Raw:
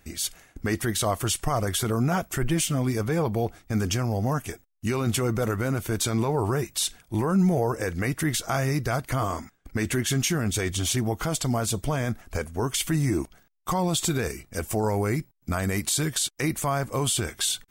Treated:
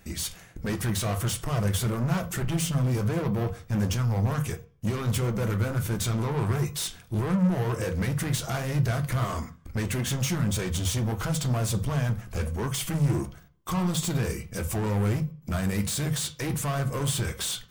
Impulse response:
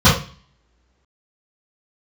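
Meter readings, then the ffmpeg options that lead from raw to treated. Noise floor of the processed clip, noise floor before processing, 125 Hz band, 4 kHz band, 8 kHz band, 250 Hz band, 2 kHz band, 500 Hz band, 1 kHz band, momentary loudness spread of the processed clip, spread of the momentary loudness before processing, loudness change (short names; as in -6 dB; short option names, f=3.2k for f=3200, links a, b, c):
-51 dBFS, -62 dBFS, +1.5 dB, -4.0 dB, -4.5 dB, -2.0 dB, -3.5 dB, -4.5 dB, -5.0 dB, 6 LU, 6 LU, -1.5 dB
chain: -filter_complex "[0:a]asoftclip=type=tanh:threshold=-30dB,flanger=delay=4.5:depth=7.1:regen=-69:speed=1.5:shape=sinusoidal,asplit=2[a][b];[1:a]atrim=start_sample=2205[c];[b][c]afir=irnorm=-1:irlink=0,volume=-34.5dB[d];[a][d]amix=inputs=2:normalize=0,volume=6.5dB"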